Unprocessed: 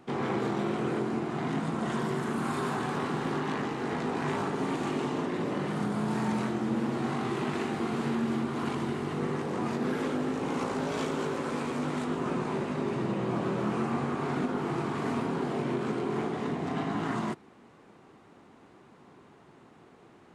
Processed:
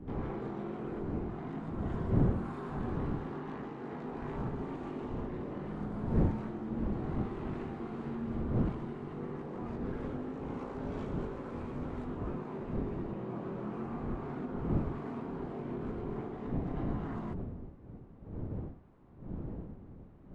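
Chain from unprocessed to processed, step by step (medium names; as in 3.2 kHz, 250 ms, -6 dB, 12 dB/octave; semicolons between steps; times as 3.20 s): wind noise 220 Hz -30 dBFS; low-pass 1 kHz 6 dB/octave; trim -8.5 dB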